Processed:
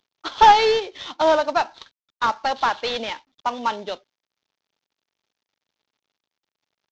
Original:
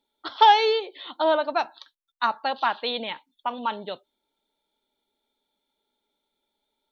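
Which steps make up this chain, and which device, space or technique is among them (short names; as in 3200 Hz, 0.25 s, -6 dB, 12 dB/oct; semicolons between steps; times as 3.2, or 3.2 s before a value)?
early wireless headset (HPF 210 Hz 12 dB/oct; CVSD 32 kbps); gain +4.5 dB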